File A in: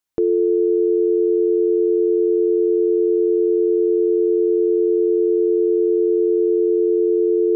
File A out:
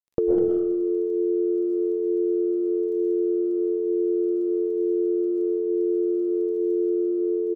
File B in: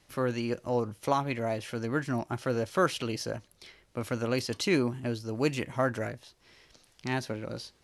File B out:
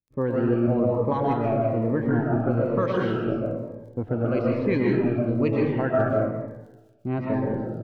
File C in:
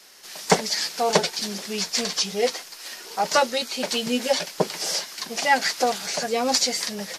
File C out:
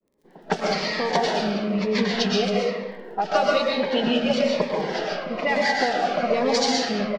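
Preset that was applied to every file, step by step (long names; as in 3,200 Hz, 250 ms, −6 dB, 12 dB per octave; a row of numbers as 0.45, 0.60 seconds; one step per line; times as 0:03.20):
downward expander −42 dBFS
low-pass that shuts in the quiet parts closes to 360 Hz, open at −16 dBFS
low-pass filter 3,900 Hz 12 dB per octave
downward compressor 5 to 1, threshold −27 dBFS
surface crackle 19 per second −56 dBFS
far-end echo of a speakerphone 200 ms, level −10 dB
comb and all-pass reverb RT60 1.1 s, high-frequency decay 0.5×, pre-delay 85 ms, DRR −2.5 dB
phaser whose notches keep moving one way falling 1.1 Hz
level +7 dB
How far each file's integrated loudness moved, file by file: −6.5, +7.0, +0.5 LU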